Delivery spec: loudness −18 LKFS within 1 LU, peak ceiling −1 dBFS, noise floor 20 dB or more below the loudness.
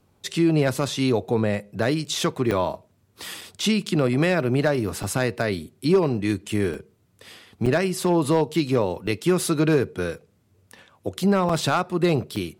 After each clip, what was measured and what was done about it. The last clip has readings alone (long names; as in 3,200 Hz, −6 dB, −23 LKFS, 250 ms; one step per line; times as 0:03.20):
share of clipped samples 0.3%; peaks flattened at −11.5 dBFS; number of dropouts 8; longest dropout 4.3 ms; integrated loudness −23.0 LKFS; sample peak −11.5 dBFS; target loudness −18.0 LKFS
→ clipped peaks rebuilt −11.5 dBFS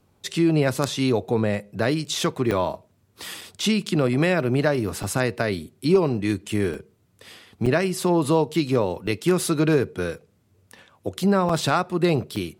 share of clipped samples 0.0%; number of dropouts 8; longest dropout 4.3 ms
→ repair the gap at 0:02.51/0:03.41/0:05.03/0:06.74/0:07.66/0:09.07/0:11.49/0:12.36, 4.3 ms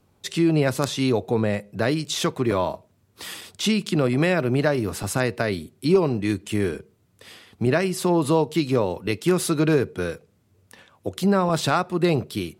number of dropouts 0; integrated loudness −23.0 LKFS; sample peak −2.5 dBFS; target loudness −18.0 LKFS
→ level +5 dB
brickwall limiter −1 dBFS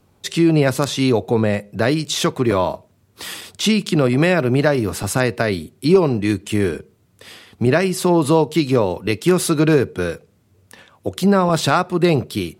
integrated loudness −18.0 LKFS; sample peak −1.0 dBFS; background noise floor −58 dBFS